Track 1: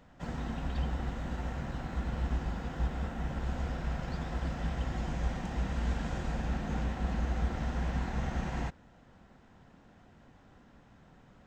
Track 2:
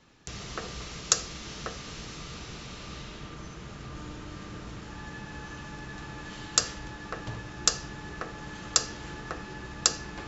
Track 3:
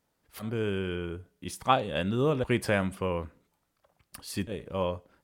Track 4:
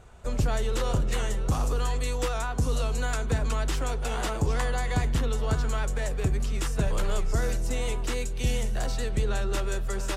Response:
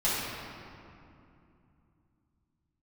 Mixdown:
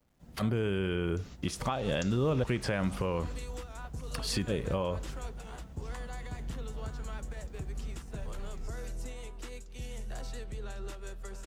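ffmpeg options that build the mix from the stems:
-filter_complex "[0:a]equalizer=frequency=1500:width=0.4:gain=-12.5,acrusher=bits=9:mix=0:aa=0.000001,volume=-13dB[link_01];[1:a]adelay=900,volume=-14.5dB[link_02];[2:a]acrossover=split=7900[link_03][link_04];[link_04]acompressor=threshold=-58dB:ratio=4:attack=1:release=60[link_05];[link_03][link_05]amix=inputs=2:normalize=0,equalizer=frequency=130:width=2:gain=4,dynaudnorm=framelen=110:gausssize=3:maxgain=7.5dB,volume=1dB,asplit=2[link_06][link_07];[3:a]alimiter=limit=-23dB:level=0:latency=1:release=333,adelay=1350,volume=-8dB[link_08];[link_07]apad=whole_len=492694[link_09];[link_02][link_09]sidechaingate=range=-32dB:threshold=-47dB:ratio=16:detection=peak[link_10];[link_06][link_08]amix=inputs=2:normalize=0,agate=range=-22dB:threshold=-39dB:ratio=16:detection=peak,acompressor=threshold=-21dB:ratio=6,volume=0dB[link_11];[link_01][link_10][link_11]amix=inputs=3:normalize=0,alimiter=limit=-21dB:level=0:latency=1:release=148"

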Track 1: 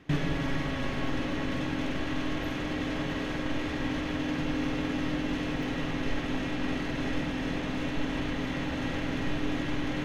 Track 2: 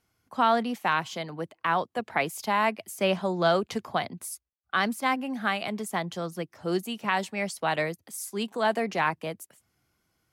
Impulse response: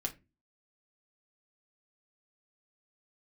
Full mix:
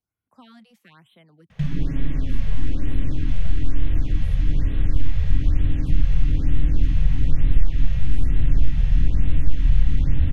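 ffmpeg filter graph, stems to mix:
-filter_complex "[0:a]asubboost=boost=11.5:cutoff=75,adelay=1500,volume=2dB[link_01];[1:a]volume=-18dB[link_02];[link_01][link_02]amix=inputs=2:normalize=0,lowshelf=frequency=200:gain=6,acrossover=split=360|1600[link_03][link_04][link_05];[link_03]acompressor=threshold=-8dB:ratio=4[link_06];[link_04]acompressor=threshold=-56dB:ratio=4[link_07];[link_05]acompressor=threshold=-47dB:ratio=4[link_08];[link_06][link_07][link_08]amix=inputs=3:normalize=0,afftfilt=real='re*(1-between(b*sr/1024,290*pow(6000/290,0.5+0.5*sin(2*PI*1.1*pts/sr))/1.41,290*pow(6000/290,0.5+0.5*sin(2*PI*1.1*pts/sr))*1.41))':imag='im*(1-between(b*sr/1024,290*pow(6000/290,0.5+0.5*sin(2*PI*1.1*pts/sr))/1.41,290*pow(6000/290,0.5+0.5*sin(2*PI*1.1*pts/sr))*1.41))':win_size=1024:overlap=0.75"

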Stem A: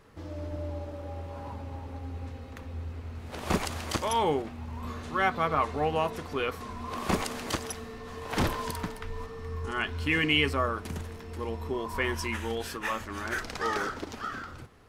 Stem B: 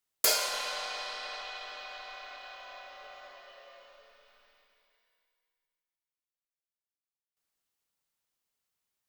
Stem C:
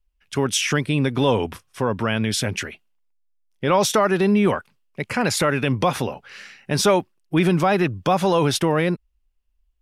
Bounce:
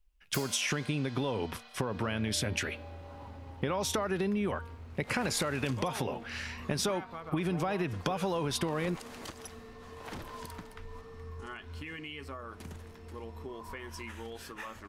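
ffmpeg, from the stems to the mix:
ffmpeg -i stem1.wav -i stem2.wav -i stem3.wav -filter_complex "[0:a]alimiter=limit=-20.5dB:level=0:latency=1:release=215,acompressor=threshold=-31dB:ratio=6,adelay=1750,volume=-7.5dB[link_01];[1:a]adelay=100,volume=-13dB[link_02];[2:a]bandreject=frequency=232.8:width_type=h:width=4,bandreject=frequency=465.6:width_type=h:width=4,bandreject=frequency=698.4:width_type=h:width=4,bandreject=frequency=931.2:width_type=h:width=4,bandreject=frequency=1164:width_type=h:width=4,bandreject=frequency=1396.8:width_type=h:width=4,bandreject=frequency=1629.6:width_type=h:width=4,bandreject=frequency=1862.4:width_type=h:width=4,bandreject=frequency=2095.2:width_type=h:width=4,bandreject=frequency=2328:width_type=h:width=4,bandreject=frequency=2560.8:width_type=h:width=4,bandreject=frequency=2793.6:width_type=h:width=4,bandreject=frequency=3026.4:width_type=h:width=4,bandreject=frequency=3259.2:width_type=h:width=4,bandreject=frequency=3492:width_type=h:width=4,bandreject=frequency=3724.8:width_type=h:width=4,bandreject=frequency=3957.6:width_type=h:width=4,bandreject=frequency=4190.4:width_type=h:width=4,bandreject=frequency=4423.2:width_type=h:width=4,bandreject=frequency=4656:width_type=h:width=4,bandreject=frequency=4888.8:width_type=h:width=4,acompressor=threshold=-27dB:ratio=6,volume=0.5dB[link_03];[link_01][link_02][link_03]amix=inputs=3:normalize=0,acompressor=threshold=-27dB:ratio=6" out.wav

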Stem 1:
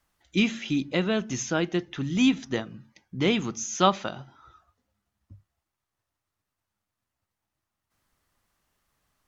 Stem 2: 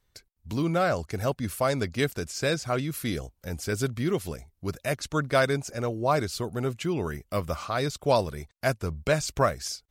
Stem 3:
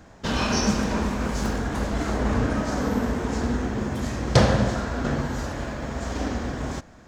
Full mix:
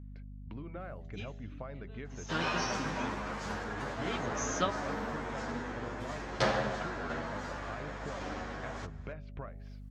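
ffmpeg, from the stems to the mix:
ffmpeg -i stem1.wav -i stem2.wav -i stem3.wav -filter_complex "[0:a]aecho=1:1:7.1:0.68,aeval=exprs='val(0)*pow(10,-28*(0.5-0.5*cos(2*PI*0.56*n/s))/20)':channel_layout=same,adelay=800,volume=1dB[link_01];[1:a]lowpass=frequency=2600:width=0.5412,lowpass=frequency=2600:width=1.3066,bandreject=frequency=81.9:width_type=h:width=4,bandreject=frequency=163.8:width_type=h:width=4,bandreject=frequency=245.7:width_type=h:width=4,bandreject=frequency=327.6:width_type=h:width=4,bandreject=frequency=409.5:width_type=h:width=4,bandreject=frequency=491.4:width_type=h:width=4,bandreject=frequency=573.3:width_type=h:width=4,bandreject=frequency=655.2:width_type=h:width=4,bandreject=frequency=737.1:width_type=h:width=4,bandreject=frequency=819:width_type=h:width=4,acompressor=threshold=-35dB:ratio=8,volume=-7dB,asplit=2[link_02][link_03];[2:a]bandpass=frequency=1500:width_type=q:width=0.52:csg=0,asplit=2[link_04][link_05];[link_05]adelay=10.4,afreqshift=0.62[link_06];[link_04][link_06]amix=inputs=2:normalize=1,adelay=2050,volume=-2.5dB[link_07];[link_03]apad=whole_len=444429[link_08];[link_01][link_08]sidechaincompress=threshold=-52dB:ratio=8:attack=16:release=748[link_09];[link_09][link_02][link_07]amix=inputs=3:normalize=0,aeval=exprs='val(0)+0.00562*(sin(2*PI*50*n/s)+sin(2*PI*2*50*n/s)/2+sin(2*PI*3*50*n/s)/3+sin(2*PI*4*50*n/s)/4+sin(2*PI*5*50*n/s)/5)':channel_layout=same" out.wav

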